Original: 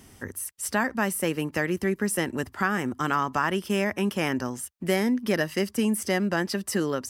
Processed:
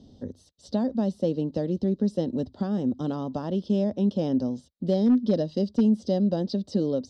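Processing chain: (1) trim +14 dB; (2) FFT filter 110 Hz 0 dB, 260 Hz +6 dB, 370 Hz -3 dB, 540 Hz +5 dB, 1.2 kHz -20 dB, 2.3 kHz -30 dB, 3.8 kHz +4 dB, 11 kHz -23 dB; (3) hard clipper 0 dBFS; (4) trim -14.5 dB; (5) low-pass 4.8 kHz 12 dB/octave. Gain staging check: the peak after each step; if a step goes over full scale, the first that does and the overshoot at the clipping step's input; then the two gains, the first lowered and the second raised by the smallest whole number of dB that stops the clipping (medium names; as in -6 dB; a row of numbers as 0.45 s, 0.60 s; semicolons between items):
+4.0 dBFS, +3.0 dBFS, 0.0 dBFS, -14.5 dBFS, -14.5 dBFS; step 1, 3.0 dB; step 1 +11 dB, step 4 -11.5 dB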